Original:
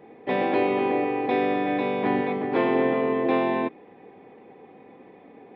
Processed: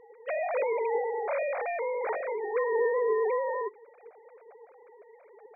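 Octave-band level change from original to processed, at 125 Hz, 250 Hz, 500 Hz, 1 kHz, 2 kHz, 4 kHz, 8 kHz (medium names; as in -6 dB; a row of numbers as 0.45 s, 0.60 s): under -35 dB, under -25 dB, -3.0 dB, -6.5 dB, -5.5 dB, under -25 dB, no reading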